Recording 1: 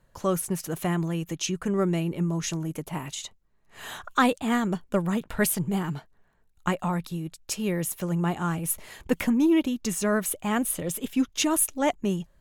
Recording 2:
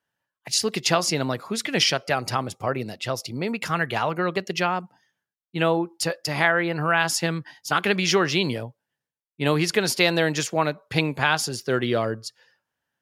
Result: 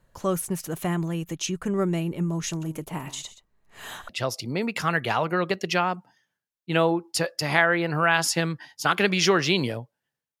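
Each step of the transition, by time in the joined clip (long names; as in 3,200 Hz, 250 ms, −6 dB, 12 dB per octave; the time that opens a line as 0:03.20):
recording 1
0:02.49–0:04.09: single-tap delay 126 ms −14.5 dB
0:04.09: continue with recording 2 from 0:02.95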